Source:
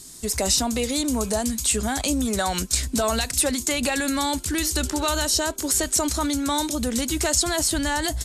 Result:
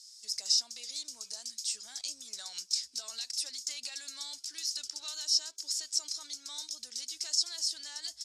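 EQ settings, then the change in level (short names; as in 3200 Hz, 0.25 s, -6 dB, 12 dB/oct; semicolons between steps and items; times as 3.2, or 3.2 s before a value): band-pass 5200 Hz, Q 5.9; 0.0 dB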